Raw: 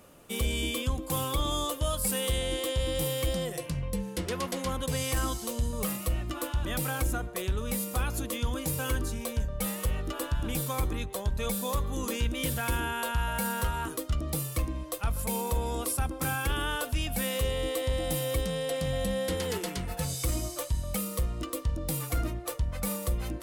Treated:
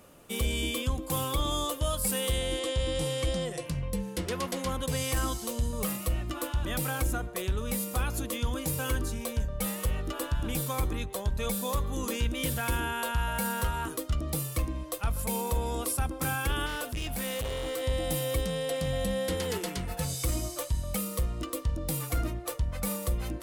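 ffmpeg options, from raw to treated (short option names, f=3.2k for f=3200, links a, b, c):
-filter_complex "[0:a]asettb=1/sr,asplit=3[a][b][c];[a]atrim=end=2.594[d];[b]atrim=start=2.59:end=3.66,asetpts=PTS-STARTPTS,afade=t=in:d=0.004:c=qsin,afade=t=out:st=1.066:d=0.004:c=qsin,lowpass=f=9.5k:w=0.5412,lowpass=f=9.5k:w=1.3066[e];[c]atrim=start=3.656[f];[d][e]acrossfade=d=0.004:c1=hsin:c2=qsin[g];[g][f]acrossfade=d=0.004:c1=qsin:c2=hsin,asettb=1/sr,asplit=3[h][i][j];[h]atrim=end=16.664[k];[i]atrim=start=16.66:end=17.83,asetpts=PTS-STARTPTS,afade=t=in:d=0.004:c=qsin,afade=t=out:st=1.166:d=0.004:c=qsin,asoftclip=type=hard:threshold=-30.5dB[l];[j]atrim=start=17.826[m];[k][l]acrossfade=d=0.004:c1=hsin:c2=qsin[n];[n][m]acrossfade=d=0.004:c1=qsin:c2=hsin"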